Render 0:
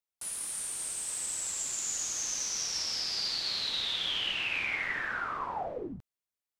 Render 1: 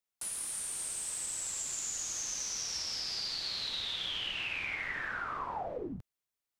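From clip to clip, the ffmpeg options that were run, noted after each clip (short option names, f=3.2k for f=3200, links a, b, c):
-filter_complex "[0:a]acrossover=split=120[a][b];[b]acompressor=threshold=-37dB:ratio=3[c];[a][c]amix=inputs=2:normalize=0,volume=1.5dB"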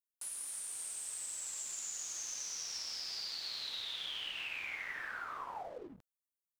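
-filter_complex "[0:a]lowshelf=f=280:g=-11.5,acrossover=split=6800[a][b];[a]aeval=exprs='sgn(val(0))*max(abs(val(0))-0.00133,0)':c=same[c];[c][b]amix=inputs=2:normalize=0,volume=-4dB"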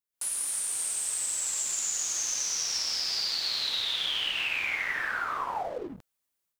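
-af "dynaudnorm=f=110:g=3:m=11.5dB"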